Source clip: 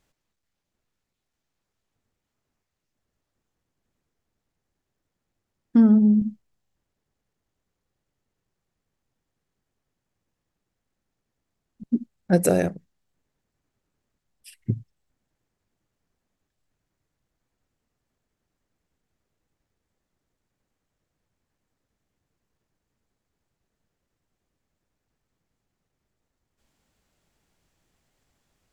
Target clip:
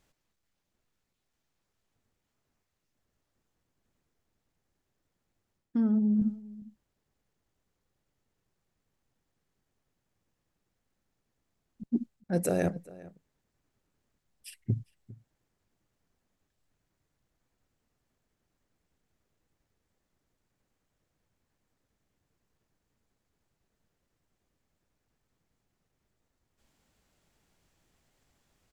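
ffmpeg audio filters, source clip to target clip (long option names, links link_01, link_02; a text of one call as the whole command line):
ffmpeg -i in.wav -filter_complex "[0:a]areverse,acompressor=threshold=-24dB:ratio=8,areverse,asplit=2[link_01][link_02];[link_02]adelay=402.3,volume=-20dB,highshelf=frequency=4000:gain=-9.05[link_03];[link_01][link_03]amix=inputs=2:normalize=0" out.wav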